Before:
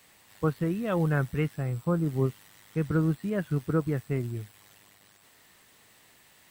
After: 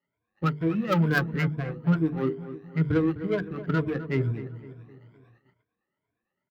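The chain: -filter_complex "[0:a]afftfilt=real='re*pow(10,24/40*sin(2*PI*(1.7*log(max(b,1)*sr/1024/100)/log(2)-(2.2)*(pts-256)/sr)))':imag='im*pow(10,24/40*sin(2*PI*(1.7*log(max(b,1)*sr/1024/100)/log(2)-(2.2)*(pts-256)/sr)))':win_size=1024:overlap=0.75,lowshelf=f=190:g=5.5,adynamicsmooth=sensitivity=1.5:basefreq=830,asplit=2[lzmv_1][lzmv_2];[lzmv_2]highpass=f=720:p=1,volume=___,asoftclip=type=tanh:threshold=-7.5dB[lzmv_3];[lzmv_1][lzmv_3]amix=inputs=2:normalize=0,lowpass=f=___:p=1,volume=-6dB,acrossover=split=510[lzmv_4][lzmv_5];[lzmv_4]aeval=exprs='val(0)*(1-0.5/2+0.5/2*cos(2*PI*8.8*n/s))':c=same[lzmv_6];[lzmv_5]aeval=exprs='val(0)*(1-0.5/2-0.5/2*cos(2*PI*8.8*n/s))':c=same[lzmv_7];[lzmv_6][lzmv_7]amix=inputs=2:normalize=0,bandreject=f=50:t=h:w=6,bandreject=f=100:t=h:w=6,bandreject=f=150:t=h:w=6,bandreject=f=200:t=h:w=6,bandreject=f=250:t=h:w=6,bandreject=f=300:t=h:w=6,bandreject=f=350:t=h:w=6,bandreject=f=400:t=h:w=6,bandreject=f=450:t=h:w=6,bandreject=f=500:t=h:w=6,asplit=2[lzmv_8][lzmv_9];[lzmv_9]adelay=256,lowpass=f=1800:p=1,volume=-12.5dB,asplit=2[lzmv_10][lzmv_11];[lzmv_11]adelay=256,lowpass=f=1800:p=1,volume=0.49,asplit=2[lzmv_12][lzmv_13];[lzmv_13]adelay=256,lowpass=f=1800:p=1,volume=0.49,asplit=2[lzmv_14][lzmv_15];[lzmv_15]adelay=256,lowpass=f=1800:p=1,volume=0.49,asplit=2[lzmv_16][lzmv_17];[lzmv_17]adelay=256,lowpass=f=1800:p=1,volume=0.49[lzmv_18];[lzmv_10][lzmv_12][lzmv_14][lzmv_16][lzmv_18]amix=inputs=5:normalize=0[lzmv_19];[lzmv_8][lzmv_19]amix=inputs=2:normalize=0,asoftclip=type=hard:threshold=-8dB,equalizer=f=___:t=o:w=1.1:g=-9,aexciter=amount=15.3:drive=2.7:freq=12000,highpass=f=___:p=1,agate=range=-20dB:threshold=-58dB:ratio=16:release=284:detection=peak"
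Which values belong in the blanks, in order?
14dB, 3200, 770, 52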